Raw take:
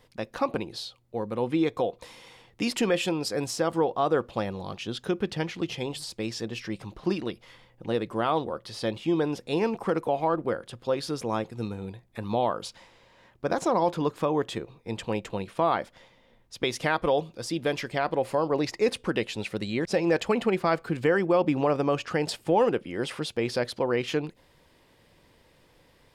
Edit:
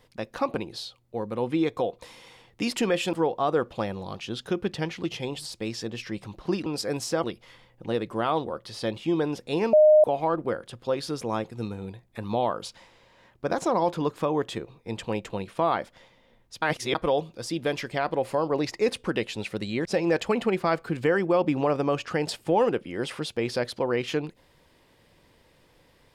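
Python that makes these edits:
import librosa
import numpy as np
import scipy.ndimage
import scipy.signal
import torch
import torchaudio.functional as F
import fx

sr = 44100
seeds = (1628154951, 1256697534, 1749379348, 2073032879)

y = fx.edit(x, sr, fx.move(start_s=3.13, length_s=0.58, to_s=7.24),
    fx.bleep(start_s=9.73, length_s=0.31, hz=613.0, db=-12.0),
    fx.reverse_span(start_s=16.62, length_s=0.33), tone=tone)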